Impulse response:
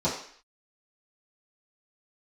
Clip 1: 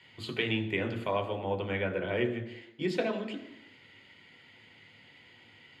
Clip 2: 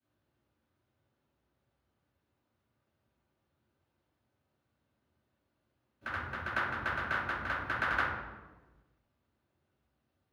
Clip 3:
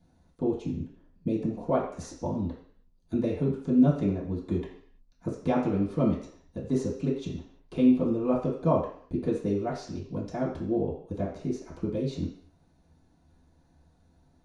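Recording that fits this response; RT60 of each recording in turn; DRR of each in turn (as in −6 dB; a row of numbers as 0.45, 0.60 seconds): 3; 0.85, 1.2, 0.55 seconds; 4.0, −16.0, −11.0 decibels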